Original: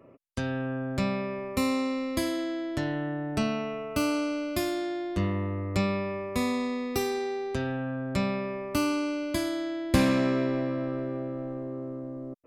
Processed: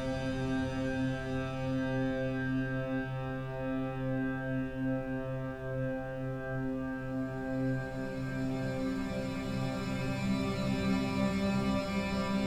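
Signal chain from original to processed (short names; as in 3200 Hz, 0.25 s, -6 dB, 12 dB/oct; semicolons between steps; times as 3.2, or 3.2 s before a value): added noise brown -43 dBFS; Paulstretch 21×, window 0.50 s, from 0.45; gain -3.5 dB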